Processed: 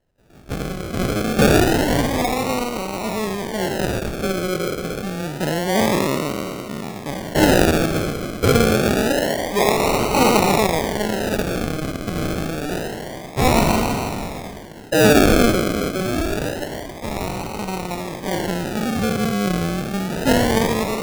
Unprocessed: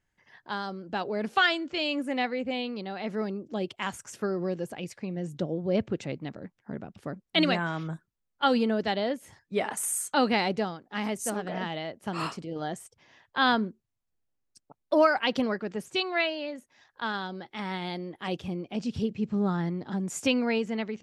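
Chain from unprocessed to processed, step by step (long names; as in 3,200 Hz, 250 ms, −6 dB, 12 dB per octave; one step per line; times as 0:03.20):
peak hold with a decay on every bin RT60 2.92 s
0:15.55–0:17.16: parametric band 1,900 Hz −4.5 dB 2.4 octaves
sample-and-hold swept by an LFO 37×, swing 60% 0.27 Hz
level +5 dB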